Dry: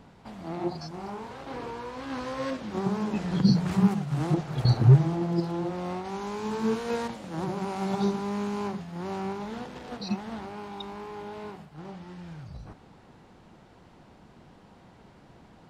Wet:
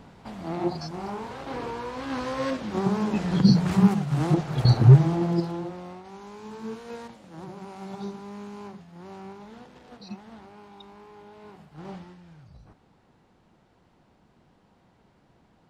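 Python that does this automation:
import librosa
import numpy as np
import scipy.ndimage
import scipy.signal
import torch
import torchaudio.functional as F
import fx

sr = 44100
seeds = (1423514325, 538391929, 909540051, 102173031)

y = fx.gain(x, sr, db=fx.line((5.3, 3.5), (5.96, -9.0), (11.39, -9.0), (11.94, 3.5), (12.2, -8.0)))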